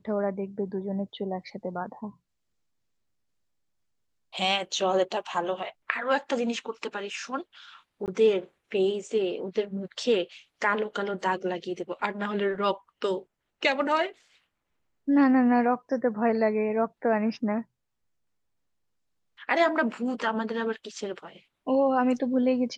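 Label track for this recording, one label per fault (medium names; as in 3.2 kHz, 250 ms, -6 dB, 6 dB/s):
8.060000	8.080000	dropout 18 ms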